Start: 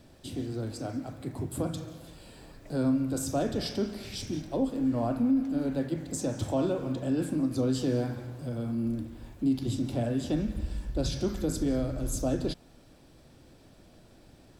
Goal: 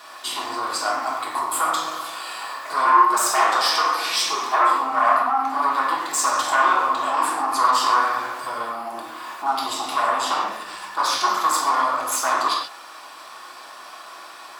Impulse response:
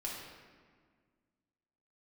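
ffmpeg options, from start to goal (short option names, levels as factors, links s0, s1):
-filter_complex "[0:a]asplit=2[s0][s1];[s1]alimiter=level_in=1.88:limit=0.0631:level=0:latency=1,volume=0.531,volume=1.41[s2];[s0][s2]amix=inputs=2:normalize=0,asettb=1/sr,asplit=3[s3][s4][s5];[s3]atrim=end=2.854[s6];[s4]atrim=start=2.85:end=4.68,asetpts=PTS-STARTPTS,afade=t=in:d=0.004:c=qsin,afade=t=out:st=1.826:d=0.004:c=qsin,afreqshift=85[s7];[s5]atrim=start=4.676[s8];[s6][s7]acrossfade=d=0.004:c1=hsin:c2=qsin[s9];[s9][s8]acrossfade=d=0.004:c1=qsin:c2=hsin,aeval=exprs='0.2*(cos(1*acos(clip(val(0)/0.2,-1,1)))-cos(1*PI/2))+0.0794*(cos(5*acos(clip(val(0)/0.2,-1,1)))-cos(5*PI/2))':c=same,highpass=f=1100:t=q:w=4.9[s10];[1:a]atrim=start_sample=2205,afade=t=out:st=0.2:d=0.01,atrim=end_sample=9261[s11];[s10][s11]afir=irnorm=-1:irlink=0,volume=1.41"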